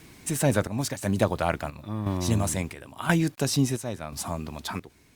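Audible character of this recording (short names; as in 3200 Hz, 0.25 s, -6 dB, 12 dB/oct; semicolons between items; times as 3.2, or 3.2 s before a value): a quantiser's noise floor 10-bit, dither none; chopped level 0.97 Hz, depth 65%, duty 65%; Opus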